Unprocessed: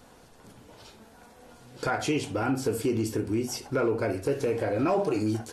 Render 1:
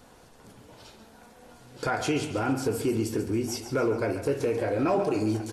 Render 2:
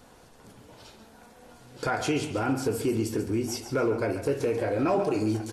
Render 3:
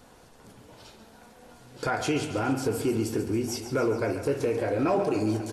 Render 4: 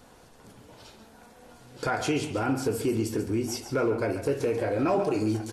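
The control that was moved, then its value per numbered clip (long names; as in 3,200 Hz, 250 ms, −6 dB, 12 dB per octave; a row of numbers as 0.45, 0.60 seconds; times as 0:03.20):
repeating echo, feedback: 41, 27, 62, 16%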